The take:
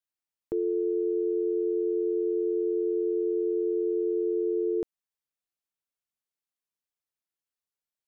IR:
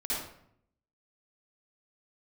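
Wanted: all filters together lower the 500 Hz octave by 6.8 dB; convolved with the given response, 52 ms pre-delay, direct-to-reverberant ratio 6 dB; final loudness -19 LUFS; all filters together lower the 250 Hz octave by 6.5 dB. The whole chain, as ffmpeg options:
-filter_complex "[0:a]equalizer=f=250:t=o:g=-7.5,equalizer=f=500:t=o:g=-5.5,asplit=2[a][b];[1:a]atrim=start_sample=2205,adelay=52[c];[b][c]afir=irnorm=-1:irlink=0,volume=-11.5dB[d];[a][d]amix=inputs=2:normalize=0,volume=16dB"

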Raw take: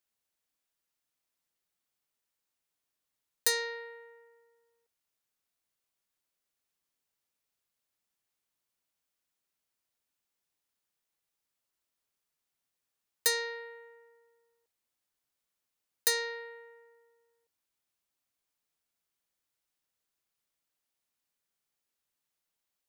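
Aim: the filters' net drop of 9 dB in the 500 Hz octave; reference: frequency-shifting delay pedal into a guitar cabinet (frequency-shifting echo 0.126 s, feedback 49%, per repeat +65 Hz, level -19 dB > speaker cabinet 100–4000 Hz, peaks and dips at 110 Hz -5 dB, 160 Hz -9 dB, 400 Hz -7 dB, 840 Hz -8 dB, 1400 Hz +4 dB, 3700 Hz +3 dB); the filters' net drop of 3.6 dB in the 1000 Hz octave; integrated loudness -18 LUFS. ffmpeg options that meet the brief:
-filter_complex "[0:a]equalizer=f=500:t=o:g=-5.5,equalizer=f=1k:t=o:g=-3,asplit=5[a][b][c][d][e];[b]adelay=126,afreqshift=65,volume=-19dB[f];[c]adelay=252,afreqshift=130,volume=-25.2dB[g];[d]adelay=378,afreqshift=195,volume=-31.4dB[h];[e]adelay=504,afreqshift=260,volume=-37.6dB[i];[a][f][g][h][i]amix=inputs=5:normalize=0,highpass=100,equalizer=f=110:t=q:w=4:g=-5,equalizer=f=160:t=q:w=4:g=-9,equalizer=f=400:t=q:w=4:g=-7,equalizer=f=840:t=q:w=4:g=-8,equalizer=f=1.4k:t=q:w=4:g=4,equalizer=f=3.7k:t=q:w=4:g=3,lowpass=f=4k:w=0.5412,lowpass=f=4k:w=1.3066,volume=18dB"

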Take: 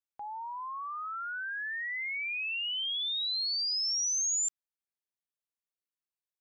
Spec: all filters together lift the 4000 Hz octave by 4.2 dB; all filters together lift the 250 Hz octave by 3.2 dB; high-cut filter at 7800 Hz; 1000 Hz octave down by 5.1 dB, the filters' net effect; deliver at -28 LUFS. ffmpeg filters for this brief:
-af "lowpass=7.8k,equalizer=f=250:t=o:g=4.5,equalizer=f=1k:t=o:g=-7,equalizer=f=4k:t=o:g=6,volume=-1dB"

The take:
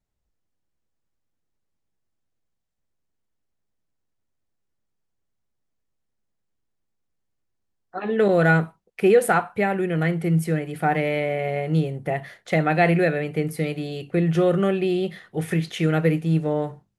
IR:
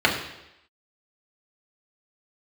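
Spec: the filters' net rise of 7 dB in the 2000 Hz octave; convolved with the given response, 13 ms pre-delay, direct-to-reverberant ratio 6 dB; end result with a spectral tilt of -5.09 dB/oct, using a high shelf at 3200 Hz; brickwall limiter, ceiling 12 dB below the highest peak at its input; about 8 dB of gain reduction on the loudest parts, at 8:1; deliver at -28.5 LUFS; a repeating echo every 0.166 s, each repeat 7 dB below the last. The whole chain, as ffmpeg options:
-filter_complex "[0:a]equalizer=f=2k:t=o:g=8,highshelf=f=3.2k:g=3.5,acompressor=threshold=-18dB:ratio=8,alimiter=limit=-18dB:level=0:latency=1,aecho=1:1:166|332|498|664|830:0.447|0.201|0.0905|0.0407|0.0183,asplit=2[a][b];[1:a]atrim=start_sample=2205,adelay=13[c];[b][c]afir=irnorm=-1:irlink=0,volume=-25.5dB[d];[a][d]amix=inputs=2:normalize=0,volume=-2.5dB"

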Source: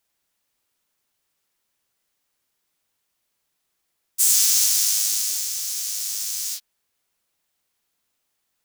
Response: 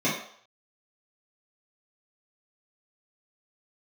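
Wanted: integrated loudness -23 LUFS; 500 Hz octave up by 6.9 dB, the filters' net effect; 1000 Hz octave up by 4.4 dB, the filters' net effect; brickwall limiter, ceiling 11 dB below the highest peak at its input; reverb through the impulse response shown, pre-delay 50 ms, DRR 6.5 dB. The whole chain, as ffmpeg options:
-filter_complex "[0:a]equalizer=f=500:t=o:g=7,equalizer=f=1k:t=o:g=4,alimiter=limit=-12dB:level=0:latency=1,asplit=2[a][b];[1:a]atrim=start_sample=2205,adelay=50[c];[b][c]afir=irnorm=-1:irlink=0,volume=-20dB[d];[a][d]amix=inputs=2:normalize=0,volume=0.5dB"

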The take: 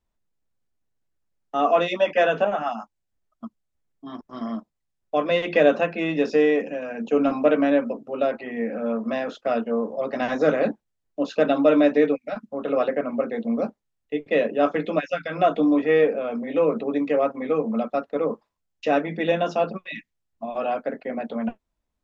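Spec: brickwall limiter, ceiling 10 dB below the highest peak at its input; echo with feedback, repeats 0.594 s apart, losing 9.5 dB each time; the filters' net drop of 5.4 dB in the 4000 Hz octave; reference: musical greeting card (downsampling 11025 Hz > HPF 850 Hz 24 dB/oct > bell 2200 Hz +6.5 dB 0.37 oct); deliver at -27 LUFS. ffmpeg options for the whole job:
-af "equalizer=f=4k:t=o:g=-8.5,alimiter=limit=-16.5dB:level=0:latency=1,aecho=1:1:594|1188|1782|2376:0.335|0.111|0.0365|0.012,aresample=11025,aresample=44100,highpass=f=850:w=0.5412,highpass=f=850:w=1.3066,equalizer=f=2.2k:t=o:w=0.37:g=6.5,volume=8.5dB"

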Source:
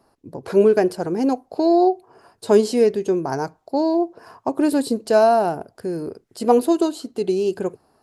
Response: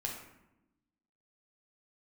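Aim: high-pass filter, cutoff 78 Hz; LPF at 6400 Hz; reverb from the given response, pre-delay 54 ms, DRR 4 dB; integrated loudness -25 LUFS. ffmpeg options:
-filter_complex "[0:a]highpass=78,lowpass=6.4k,asplit=2[a][b];[1:a]atrim=start_sample=2205,adelay=54[c];[b][c]afir=irnorm=-1:irlink=0,volume=-5.5dB[d];[a][d]amix=inputs=2:normalize=0,volume=-6.5dB"

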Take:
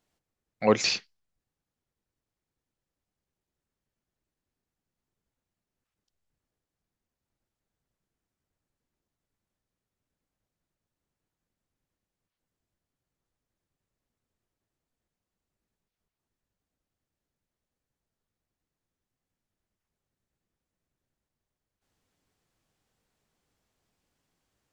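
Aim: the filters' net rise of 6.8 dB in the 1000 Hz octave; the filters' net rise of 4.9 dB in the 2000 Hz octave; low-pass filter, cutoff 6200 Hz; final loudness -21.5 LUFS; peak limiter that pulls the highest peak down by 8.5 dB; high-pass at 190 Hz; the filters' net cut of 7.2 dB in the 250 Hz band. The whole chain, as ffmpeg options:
-af "highpass=190,lowpass=6.2k,equalizer=f=250:t=o:g=-7.5,equalizer=f=1k:t=o:g=7.5,equalizer=f=2k:t=o:g=5,volume=6.5dB,alimiter=limit=-8.5dB:level=0:latency=1"

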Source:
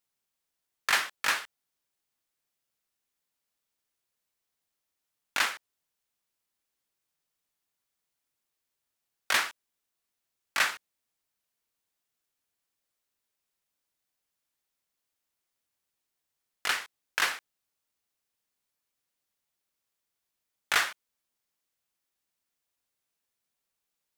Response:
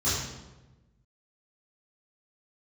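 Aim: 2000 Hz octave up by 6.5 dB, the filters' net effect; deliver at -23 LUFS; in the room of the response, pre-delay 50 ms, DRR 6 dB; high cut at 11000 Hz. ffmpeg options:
-filter_complex "[0:a]lowpass=11k,equalizer=f=2k:t=o:g=8,asplit=2[a][b];[1:a]atrim=start_sample=2205,adelay=50[c];[b][c]afir=irnorm=-1:irlink=0,volume=-17dB[d];[a][d]amix=inputs=2:normalize=0,volume=1dB"

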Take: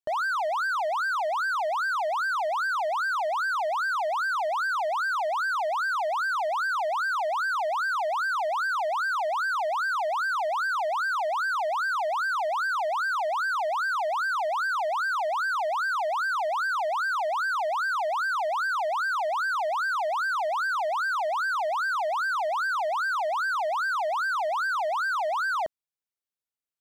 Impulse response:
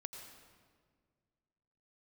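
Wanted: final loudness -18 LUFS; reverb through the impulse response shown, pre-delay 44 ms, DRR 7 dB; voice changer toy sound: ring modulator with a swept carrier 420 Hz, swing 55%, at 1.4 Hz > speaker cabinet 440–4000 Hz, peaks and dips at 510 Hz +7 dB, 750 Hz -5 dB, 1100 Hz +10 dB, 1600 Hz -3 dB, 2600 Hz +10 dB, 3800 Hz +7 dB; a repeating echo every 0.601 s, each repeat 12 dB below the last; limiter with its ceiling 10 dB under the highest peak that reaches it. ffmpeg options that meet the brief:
-filter_complex "[0:a]alimiter=level_in=8dB:limit=-24dB:level=0:latency=1,volume=-8dB,aecho=1:1:601|1202|1803:0.251|0.0628|0.0157,asplit=2[a][b];[1:a]atrim=start_sample=2205,adelay=44[c];[b][c]afir=irnorm=-1:irlink=0,volume=-3.5dB[d];[a][d]amix=inputs=2:normalize=0,aeval=exprs='val(0)*sin(2*PI*420*n/s+420*0.55/1.4*sin(2*PI*1.4*n/s))':c=same,highpass=440,equalizer=f=510:t=q:w=4:g=7,equalizer=f=750:t=q:w=4:g=-5,equalizer=f=1.1k:t=q:w=4:g=10,equalizer=f=1.6k:t=q:w=4:g=-3,equalizer=f=2.6k:t=q:w=4:g=10,equalizer=f=3.8k:t=q:w=4:g=7,lowpass=f=4k:w=0.5412,lowpass=f=4k:w=1.3066,volume=17dB"

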